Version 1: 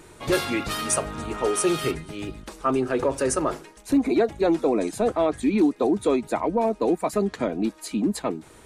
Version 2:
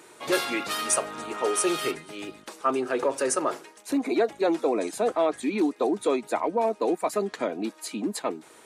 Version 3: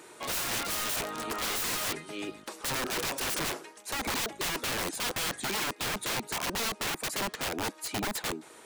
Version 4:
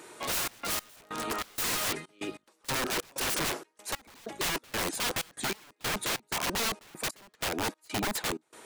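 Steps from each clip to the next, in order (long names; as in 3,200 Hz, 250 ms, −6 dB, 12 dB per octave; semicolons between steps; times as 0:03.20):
Bessel high-pass filter 390 Hz, order 2
wrap-around overflow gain 26.5 dB
gate pattern "xxx.x..xx." 95 BPM −24 dB; level +1.5 dB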